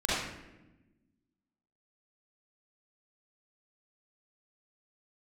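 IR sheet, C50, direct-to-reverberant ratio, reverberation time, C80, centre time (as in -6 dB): -4.0 dB, -9.5 dB, 1.0 s, 1.0 dB, 88 ms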